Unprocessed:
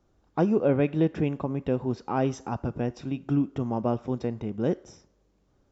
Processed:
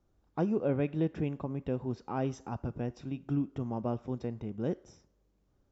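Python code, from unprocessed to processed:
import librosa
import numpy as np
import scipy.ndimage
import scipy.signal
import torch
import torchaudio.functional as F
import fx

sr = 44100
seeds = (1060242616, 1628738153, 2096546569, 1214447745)

y = fx.low_shelf(x, sr, hz=150.0, db=5.0)
y = F.gain(torch.from_numpy(y), -8.0).numpy()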